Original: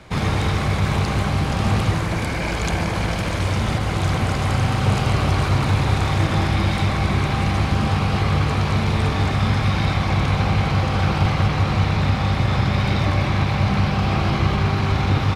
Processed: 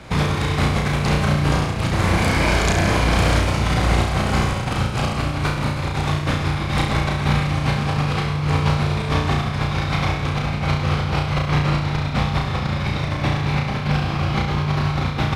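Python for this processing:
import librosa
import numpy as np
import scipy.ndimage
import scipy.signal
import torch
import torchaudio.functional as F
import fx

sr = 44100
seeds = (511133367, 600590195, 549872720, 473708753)

y = fx.over_compress(x, sr, threshold_db=-22.0, ratio=-0.5)
y = fx.room_flutter(y, sr, wall_m=5.8, rt60_s=0.65)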